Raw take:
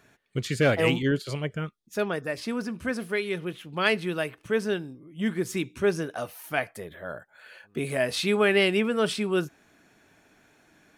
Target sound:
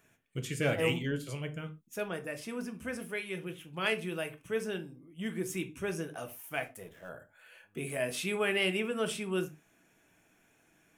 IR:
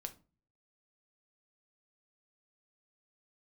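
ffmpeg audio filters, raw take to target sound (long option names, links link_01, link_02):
-filter_complex "[0:a]asettb=1/sr,asplit=3[link_01][link_02][link_03];[link_01]atrim=end=6.354[link_04];[link_02]atrim=start=6.35:end=7.09,asetpts=PTS-STARTPTS,afade=type=in:duration=0.004:curve=qsin,afade=type=out:start_time=0.736:duration=0.004:curve=qsin,aeval=exprs='sgn(val(0))*max(abs(val(0))-0.00237,0)':channel_layout=same[link_05];[link_03]atrim=start=7.086[link_06];[link_04][link_05]acrossfade=duration=0.004:curve1=hsin:curve2=qsin[link_07];[link_07][link_06]acrossfade=duration=0.004:curve1=qsin:curve2=hsin,aexciter=amount=1.2:drive=4.8:freq=2300[link_08];[1:a]atrim=start_sample=2205,atrim=end_sample=6174[link_09];[link_08][link_09]afir=irnorm=-1:irlink=0,volume=-5dB"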